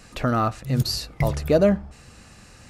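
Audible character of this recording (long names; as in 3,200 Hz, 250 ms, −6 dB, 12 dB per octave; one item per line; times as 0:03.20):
background noise floor −49 dBFS
spectral slope −6.0 dB per octave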